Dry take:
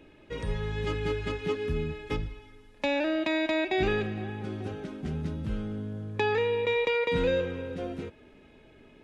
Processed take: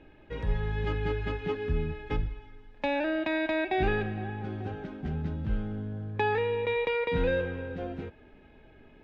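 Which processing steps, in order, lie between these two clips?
LPF 3600 Hz 12 dB/oct; low shelf 87 Hz +9 dB; small resonant body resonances 790/1600 Hz, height 7 dB, ringing for 20 ms; gain -2.5 dB

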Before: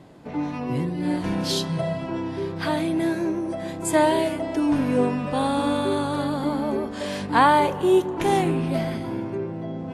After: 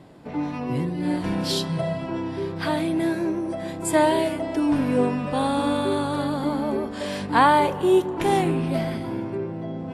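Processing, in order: notch 6400 Hz, Q 12

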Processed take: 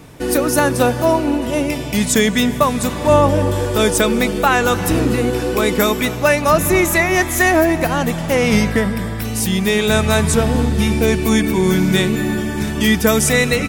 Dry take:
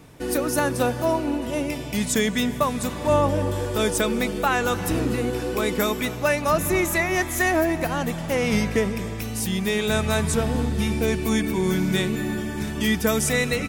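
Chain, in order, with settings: 8.71–9.25 thirty-one-band EQ 400 Hz -9 dB, 1600 Hz +6 dB, 2500 Hz -9 dB, 6300 Hz -11 dB; gain +7.5 dB

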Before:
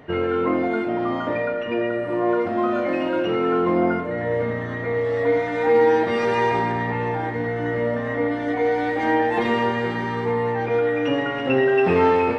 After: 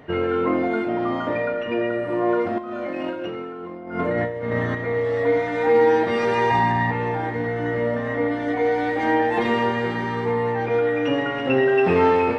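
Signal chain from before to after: 2.58–4.75 negative-ratio compressor -26 dBFS, ratio -0.5; 6.5–6.91 comb 1.1 ms, depth 75%

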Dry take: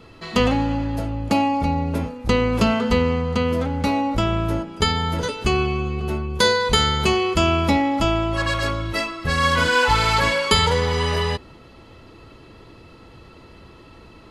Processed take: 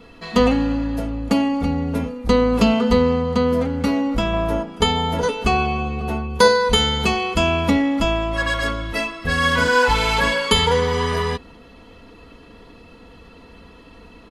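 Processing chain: bell 6100 Hz -2.5 dB 1.6 oct; comb 4.2 ms, depth 61%; 4.33–6.48 dynamic EQ 740 Hz, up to +6 dB, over -37 dBFS, Q 1.1

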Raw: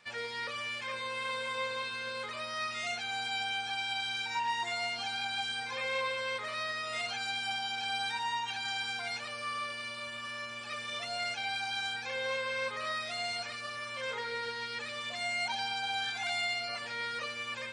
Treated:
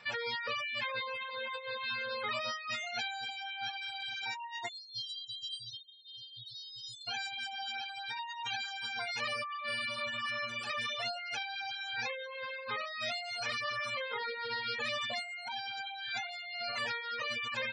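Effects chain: negative-ratio compressor -40 dBFS, ratio -1; reverb removal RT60 0.78 s; spectral gate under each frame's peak -20 dB strong; bell 280 Hz -2 dB; spectral delete 4.69–7.08, 200–3100 Hz; gain +3.5 dB

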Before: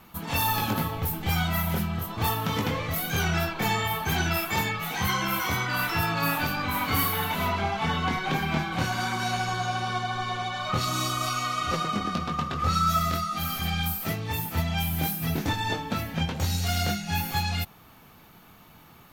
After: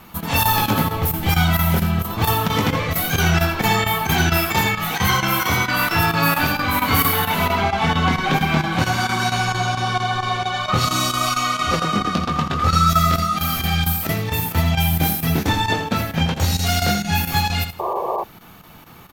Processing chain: feedback echo 84 ms, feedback 22%, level -9 dB; chopper 4.4 Hz, depth 65%, duty 90%; painted sound noise, 17.79–18.24, 340–1200 Hz -31 dBFS; gain +8 dB

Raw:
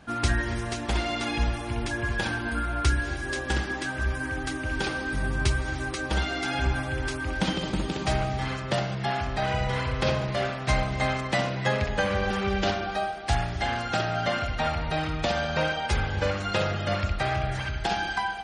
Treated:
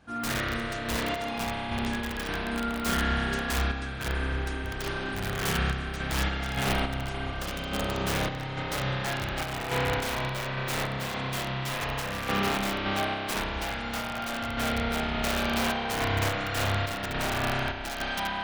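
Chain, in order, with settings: wrapped overs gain 20 dB; spring tank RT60 4 s, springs 30 ms, chirp 25 ms, DRR -6 dB; random-step tremolo; gain -5.5 dB

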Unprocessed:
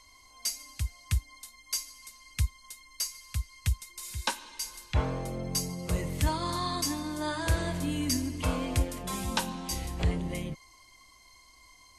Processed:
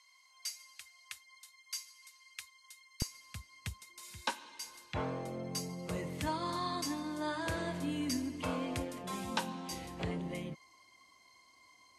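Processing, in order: HPF 1400 Hz 12 dB/oct, from 3.02 s 160 Hz; high shelf 5400 Hz -9.5 dB; gain -3.5 dB

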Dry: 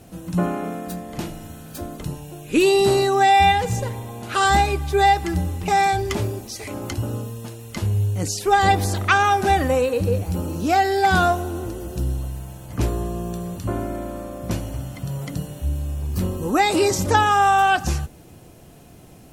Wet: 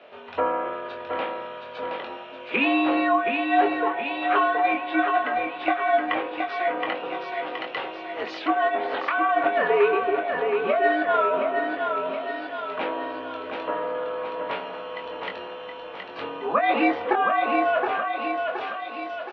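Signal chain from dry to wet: mistuned SSB -86 Hz 580–3400 Hz; negative-ratio compressor -23 dBFS, ratio -1; doubler 22 ms -5 dB; feedback echo 0.721 s, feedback 50%, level -5 dB; treble ducked by the level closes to 2300 Hz, closed at -23 dBFS; gain +1.5 dB

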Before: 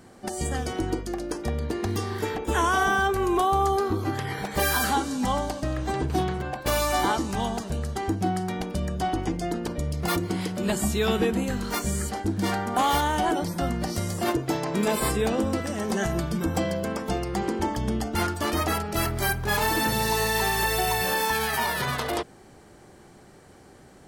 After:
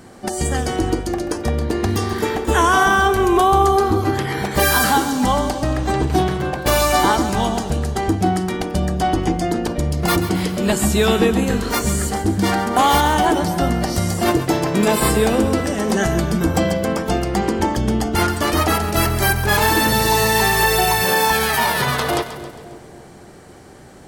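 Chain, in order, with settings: split-band echo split 700 Hz, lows 0.278 s, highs 0.135 s, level -11.5 dB; gain +8 dB

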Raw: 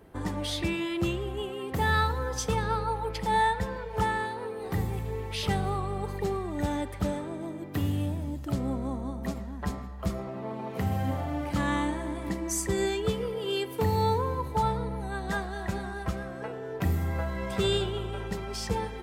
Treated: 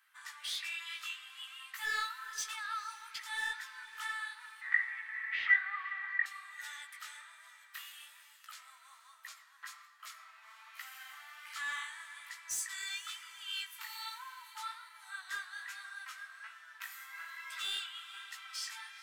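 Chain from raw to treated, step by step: steep high-pass 1300 Hz 36 dB/oct; overloaded stage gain 29.5 dB; chorus 1.2 Hz, delay 15 ms, depth 6.6 ms; 4.61–6.26 synth low-pass 1900 Hz, resonance Q 12; diffused feedback echo 0.475 s, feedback 46%, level -16 dB

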